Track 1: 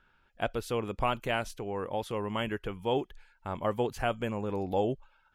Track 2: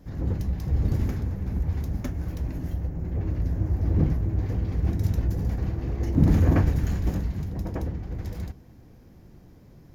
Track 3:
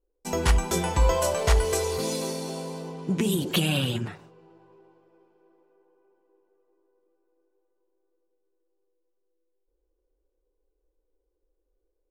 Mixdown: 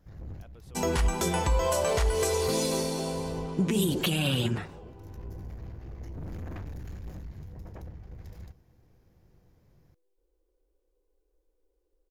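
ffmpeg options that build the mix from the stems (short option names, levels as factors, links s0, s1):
-filter_complex "[0:a]alimiter=level_in=1.41:limit=0.0631:level=0:latency=1,volume=0.708,volume=0.133,asplit=2[s0][s1];[1:a]equalizer=f=250:w=1.5:g=-7,aeval=exprs='(tanh(22.4*val(0)+0.4)-tanh(0.4))/22.4':c=same,volume=0.355[s2];[2:a]adelay=500,volume=1.26[s3];[s1]apad=whole_len=438547[s4];[s2][s4]sidechaincompress=threshold=0.00126:ratio=8:attack=12:release=428[s5];[s0][s5][s3]amix=inputs=3:normalize=0,alimiter=limit=0.15:level=0:latency=1:release=129"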